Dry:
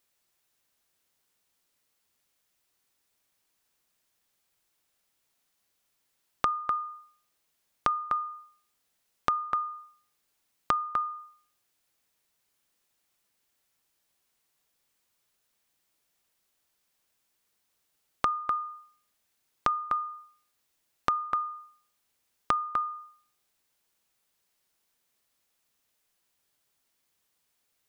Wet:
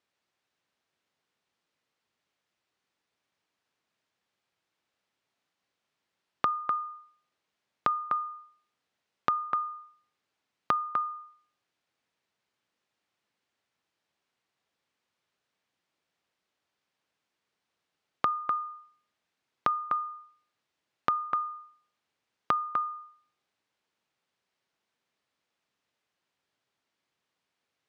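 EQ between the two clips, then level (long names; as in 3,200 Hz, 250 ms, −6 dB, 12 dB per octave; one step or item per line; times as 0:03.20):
high-pass filter 100 Hz 12 dB per octave
Bessel low-pass filter 3,300 Hz, order 2
0.0 dB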